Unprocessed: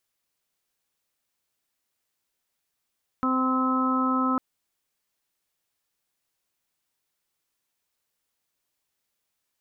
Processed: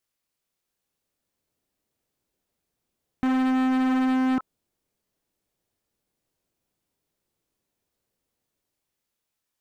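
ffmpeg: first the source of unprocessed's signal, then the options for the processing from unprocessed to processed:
-f lavfi -i "aevalsrc='0.0631*sin(2*PI*259*t)+0.0178*sin(2*PI*518*t)+0.0141*sin(2*PI*777*t)+0.0335*sin(2*PI*1036*t)+0.0531*sin(2*PI*1295*t)':duration=1.15:sample_rate=44100"
-filter_complex "[0:a]acrossover=split=620[link_01][link_02];[link_01]dynaudnorm=framelen=130:gausssize=17:maxgain=10dB[link_03];[link_02]flanger=delay=22.5:depth=5.8:speed=0.83[link_04];[link_03][link_04]amix=inputs=2:normalize=0,volume=21dB,asoftclip=hard,volume=-21dB"

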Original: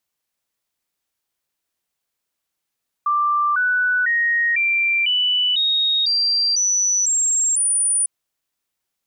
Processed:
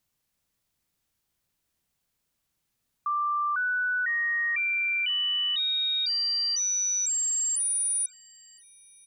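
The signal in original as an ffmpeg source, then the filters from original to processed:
-f lavfi -i "aevalsrc='0.168*clip(min(mod(t,0.5),0.5-mod(t,0.5))/0.005,0,1)*sin(2*PI*1180*pow(2,floor(t/0.5)/3)*mod(t,0.5))':duration=5:sample_rate=44100"
-filter_complex "[0:a]bass=frequency=250:gain=12,treble=frequency=4000:gain=1,alimiter=limit=-24dB:level=0:latency=1:release=15,asplit=2[link_01][link_02];[link_02]adelay=1018,lowpass=frequency=3600:poles=1,volume=-20dB,asplit=2[link_03][link_04];[link_04]adelay=1018,lowpass=frequency=3600:poles=1,volume=0.48,asplit=2[link_05][link_06];[link_06]adelay=1018,lowpass=frequency=3600:poles=1,volume=0.48,asplit=2[link_07][link_08];[link_08]adelay=1018,lowpass=frequency=3600:poles=1,volume=0.48[link_09];[link_01][link_03][link_05][link_07][link_09]amix=inputs=5:normalize=0"

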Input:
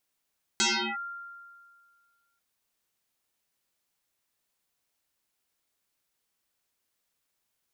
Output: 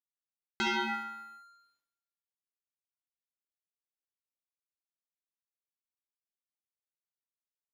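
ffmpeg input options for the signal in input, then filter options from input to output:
-f lavfi -i "aevalsrc='0.0944*pow(10,-3*t/1.92)*sin(2*PI*1390*t+11*clip(1-t/0.37,0,1)*sin(2*PI*0.42*1390*t))':duration=1.79:sample_rate=44100"
-filter_complex "[0:a]lowpass=2400,aeval=exprs='sgn(val(0))*max(abs(val(0))-0.00106,0)':channel_layout=same,asplit=2[link_01][link_02];[link_02]aecho=0:1:68|136|204|272|340|408|476:0.376|0.21|0.118|0.066|0.037|0.0207|0.0116[link_03];[link_01][link_03]amix=inputs=2:normalize=0"

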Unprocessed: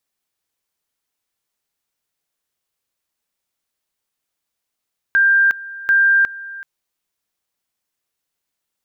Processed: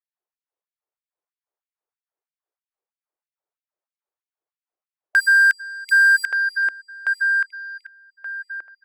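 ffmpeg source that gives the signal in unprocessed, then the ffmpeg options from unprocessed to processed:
-f lavfi -i "aevalsrc='pow(10,(-10-19*gte(mod(t,0.74),0.36))/20)*sin(2*PI*1590*t)':duration=1.48:sample_rate=44100"
-filter_complex "[0:a]adynamicsmooth=sensitivity=7.5:basefreq=910,asplit=2[link_01][link_02];[link_02]adelay=1177,lowpass=frequency=1900:poles=1,volume=-3dB,asplit=2[link_03][link_04];[link_04]adelay=1177,lowpass=frequency=1900:poles=1,volume=0.34,asplit=2[link_05][link_06];[link_06]adelay=1177,lowpass=frequency=1900:poles=1,volume=0.34,asplit=2[link_07][link_08];[link_08]adelay=1177,lowpass=frequency=1900:poles=1,volume=0.34[link_09];[link_03][link_05][link_07][link_09]amix=inputs=4:normalize=0[link_10];[link_01][link_10]amix=inputs=2:normalize=0,afftfilt=real='re*gte(b*sr/1024,290*pow(2100/290,0.5+0.5*sin(2*PI*3.1*pts/sr)))':imag='im*gte(b*sr/1024,290*pow(2100/290,0.5+0.5*sin(2*PI*3.1*pts/sr)))':win_size=1024:overlap=0.75"

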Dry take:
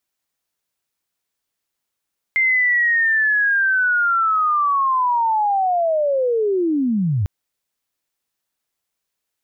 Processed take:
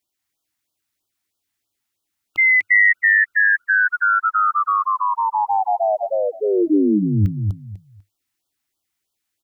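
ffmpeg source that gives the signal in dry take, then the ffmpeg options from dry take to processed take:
-f lavfi -i "aevalsrc='pow(10,(-13.5-2.5*t/4.9)/20)*sin(2*PI*(2100*t-2012*t*t/(2*4.9)))':duration=4.9:sample_rate=44100"
-af "equalizer=frequency=100:width_type=o:width=0.33:gain=7,equalizer=frequency=160:width_type=o:width=0.33:gain=-6,equalizer=frequency=315:width_type=o:width=0.33:gain=6,equalizer=frequency=500:width_type=o:width=0.33:gain=-4,equalizer=frequency=1000:width_type=o:width=0.33:gain=-3,equalizer=frequency=2000:width_type=o:width=0.33:gain=3,aecho=1:1:248|496|744:0.631|0.145|0.0334,afftfilt=real='re*(1-between(b*sr/1024,410*pow(2100/410,0.5+0.5*sin(2*PI*3.1*pts/sr))/1.41,410*pow(2100/410,0.5+0.5*sin(2*PI*3.1*pts/sr))*1.41))':imag='im*(1-between(b*sr/1024,410*pow(2100/410,0.5+0.5*sin(2*PI*3.1*pts/sr))/1.41,410*pow(2100/410,0.5+0.5*sin(2*PI*3.1*pts/sr))*1.41))':win_size=1024:overlap=0.75"

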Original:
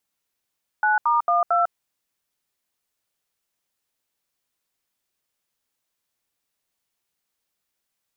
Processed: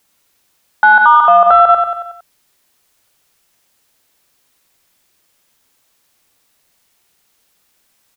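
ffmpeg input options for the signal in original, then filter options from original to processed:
-f lavfi -i "aevalsrc='0.112*clip(min(mod(t,0.225),0.15-mod(t,0.225))/0.002,0,1)*(eq(floor(t/0.225),0)*(sin(2*PI*852*mod(t,0.225))+sin(2*PI*1477*mod(t,0.225)))+eq(floor(t/0.225),1)*(sin(2*PI*941*mod(t,0.225))+sin(2*PI*1209*mod(t,0.225)))+eq(floor(t/0.225),2)*(sin(2*PI*697*mod(t,0.225))+sin(2*PI*1209*mod(t,0.225)))+eq(floor(t/0.225),3)*(sin(2*PI*697*mod(t,0.225))+sin(2*PI*1336*mod(t,0.225))))':duration=0.9:sample_rate=44100"
-filter_complex "[0:a]acontrast=86,asplit=2[link_01][link_02];[link_02]aecho=0:1:92|184|276|368|460|552:0.398|0.211|0.112|0.0593|0.0314|0.0166[link_03];[link_01][link_03]amix=inputs=2:normalize=0,alimiter=level_in=11dB:limit=-1dB:release=50:level=0:latency=1"

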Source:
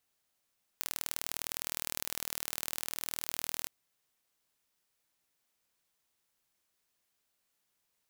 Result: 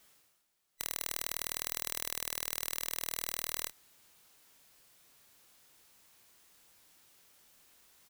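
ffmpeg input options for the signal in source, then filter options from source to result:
-f lavfi -i "aevalsrc='0.473*eq(mod(n,1116),0)*(0.5+0.5*eq(mod(n,2232),0))':duration=2.87:sample_rate=44100"
-filter_complex "[0:a]afftfilt=real='real(if(between(b,1,1012),(2*floor((b-1)/92)+1)*92-b,b),0)':imag='imag(if(between(b,1,1012),(2*floor((b-1)/92)+1)*92-b,b),0)*if(between(b,1,1012),-1,1)':win_size=2048:overlap=0.75,areverse,acompressor=mode=upward:threshold=-50dB:ratio=2.5,areverse,asplit=2[link_01][link_02];[link_02]adelay=27,volume=-8dB[link_03];[link_01][link_03]amix=inputs=2:normalize=0"

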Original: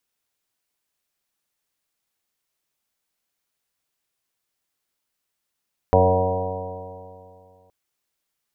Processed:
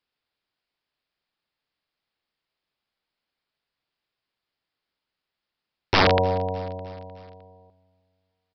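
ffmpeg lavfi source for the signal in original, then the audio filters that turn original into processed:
-f lavfi -i "aevalsrc='0.126*pow(10,-3*t/2.44)*sin(2*PI*91.25*t)+0.0562*pow(10,-3*t/2.44)*sin(2*PI*182.76*t)+0.0473*pow(10,-3*t/2.44)*sin(2*PI*274.83*t)+0.0224*pow(10,-3*t/2.44)*sin(2*PI*367.71*t)+0.141*pow(10,-3*t/2.44)*sin(2*PI*461.66*t)+0.141*pow(10,-3*t/2.44)*sin(2*PI*556.96*t)+0.0794*pow(10,-3*t/2.44)*sin(2*PI*653.85*t)+0.112*pow(10,-3*t/2.44)*sin(2*PI*752.59*t)+0.0178*pow(10,-3*t/2.44)*sin(2*PI*853.4*t)+0.0794*pow(10,-3*t/2.44)*sin(2*PI*956.51*t)':duration=1.77:sample_rate=44100"
-af "aresample=11025,aeval=exprs='(mod(3.55*val(0)+1,2)-1)/3.55':channel_layout=same,aresample=44100,aecho=1:1:306|612|918|1224:0.0794|0.0445|0.0249|0.0139"

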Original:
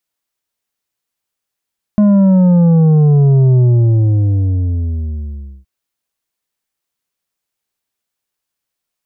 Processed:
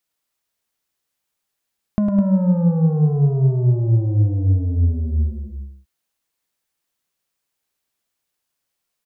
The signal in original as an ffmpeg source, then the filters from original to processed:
-f lavfi -i "aevalsrc='0.447*clip((3.67-t)/2.08,0,1)*tanh(2.24*sin(2*PI*210*3.67/log(65/210)*(exp(log(65/210)*t/3.67)-1)))/tanh(2.24)':duration=3.67:sample_rate=44100"
-filter_complex "[0:a]acompressor=threshold=-18dB:ratio=6,asplit=2[link_01][link_02];[link_02]aecho=0:1:105|207:0.447|0.398[link_03];[link_01][link_03]amix=inputs=2:normalize=0"

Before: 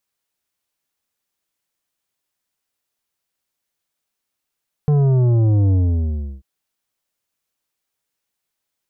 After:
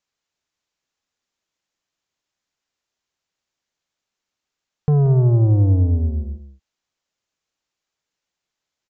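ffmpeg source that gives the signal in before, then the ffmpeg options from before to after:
-f lavfi -i "aevalsrc='0.224*clip((1.54-t)/0.7,0,1)*tanh(2.99*sin(2*PI*150*1.54/log(65/150)*(exp(log(65/150)*t/1.54)-1)))/tanh(2.99)':duration=1.54:sample_rate=44100"
-filter_complex "[0:a]aresample=16000,aresample=44100,asplit=2[link_01][link_02];[link_02]aecho=0:1:180:0.282[link_03];[link_01][link_03]amix=inputs=2:normalize=0"

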